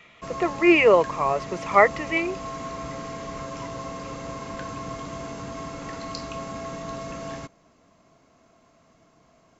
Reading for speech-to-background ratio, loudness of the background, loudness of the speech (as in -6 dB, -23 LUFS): 14.5 dB, -35.0 LUFS, -20.5 LUFS